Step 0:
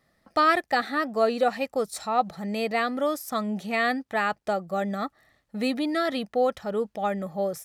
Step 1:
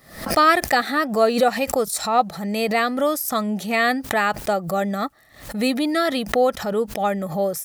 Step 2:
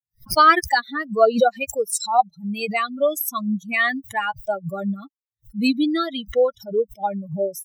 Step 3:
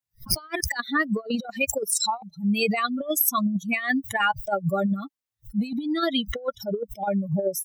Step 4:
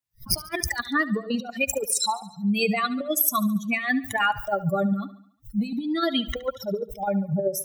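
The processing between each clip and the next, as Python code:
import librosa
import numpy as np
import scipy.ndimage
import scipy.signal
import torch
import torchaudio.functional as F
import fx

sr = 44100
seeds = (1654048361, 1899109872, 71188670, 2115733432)

y1 = fx.high_shelf(x, sr, hz=8700.0, db=11.5)
y1 = fx.pre_swell(y1, sr, db_per_s=110.0)
y1 = y1 * 10.0 ** (5.0 / 20.0)
y2 = fx.bin_expand(y1, sr, power=3.0)
y2 = y2 * 10.0 ** (5.5 / 20.0)
y3 = fx.over_compress(y2, sr, threshold_db=-24.0, ratio=-0.5)
y4 = fx.echo_feedback(y3, sr, ms=71, feedback_pct=53, wet_db=-17)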